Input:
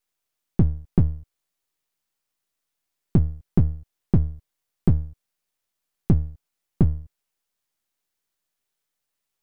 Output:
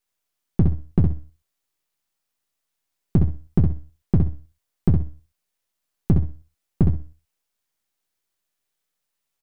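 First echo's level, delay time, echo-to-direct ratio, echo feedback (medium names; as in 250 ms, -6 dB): -6.0 dB, 63 ms, -6.0 dB, 20%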